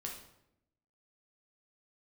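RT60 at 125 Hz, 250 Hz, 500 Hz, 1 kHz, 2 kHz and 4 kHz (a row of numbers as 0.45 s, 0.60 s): 1.1 s, 1.1 s, 0.90 s, 0.75 s, 0.65 s, 0.60 s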